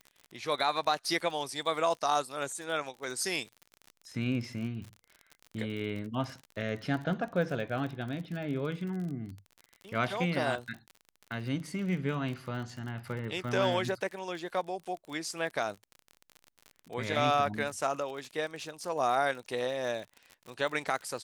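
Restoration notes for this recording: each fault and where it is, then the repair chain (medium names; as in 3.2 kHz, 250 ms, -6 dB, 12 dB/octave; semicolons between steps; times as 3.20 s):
crackle 44 per s -38 dBFS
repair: de-click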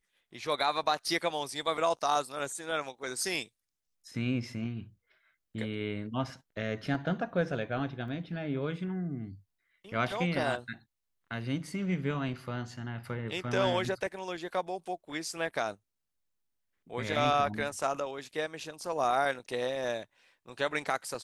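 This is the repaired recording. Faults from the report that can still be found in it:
nothing left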